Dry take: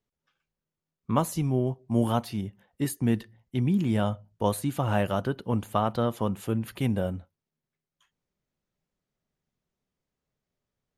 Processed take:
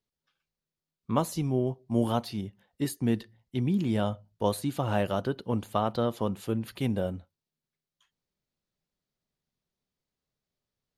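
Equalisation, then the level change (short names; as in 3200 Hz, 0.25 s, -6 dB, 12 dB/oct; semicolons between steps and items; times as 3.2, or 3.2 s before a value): dynamic EQ 420 Hz, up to +4 dB, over -35 dBFS, Q 0.73; bell 4300 Hz +7 dB 0.85 oct; -4.0 dB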